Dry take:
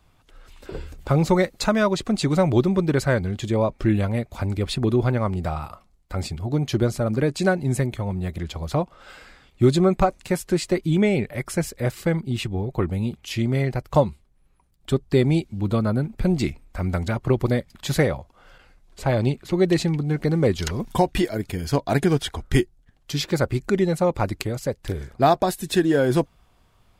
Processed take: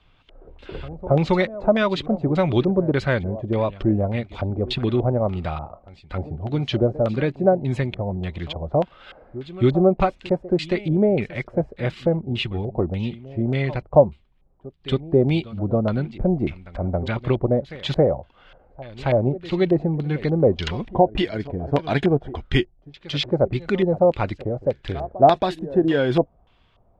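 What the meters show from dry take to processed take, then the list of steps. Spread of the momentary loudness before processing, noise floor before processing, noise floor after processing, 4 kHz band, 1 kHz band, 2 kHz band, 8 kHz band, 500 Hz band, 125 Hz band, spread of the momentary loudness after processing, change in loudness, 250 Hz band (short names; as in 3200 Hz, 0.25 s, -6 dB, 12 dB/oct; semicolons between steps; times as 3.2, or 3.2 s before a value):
9 LU, -60 dBFS, -58 dBFS, +0.5 dB, +1.5 dB, -0.5 dB, under -15 dB, +2.5 dB, -0.5 dB, 11 LU, +1.0 dB, 0.0 dB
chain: reverse echo 0.274 s -17.5 dB; LFO low-pass square 1.7 Hz 660–3200 Hz; gain -1 dB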